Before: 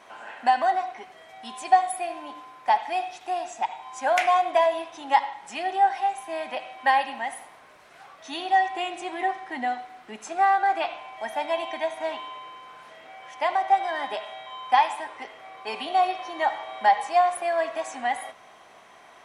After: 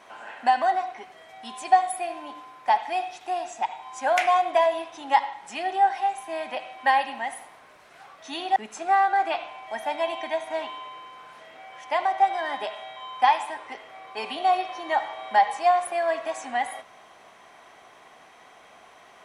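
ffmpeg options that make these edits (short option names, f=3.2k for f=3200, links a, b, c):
-filter_complex "[0:a]asplit=2[a][b];[a]atrim=end=8.562[c];[b]atrim=start=10.058[d];[c][d]acrossfade=d=0.004:c1=hsin:c2=hsin"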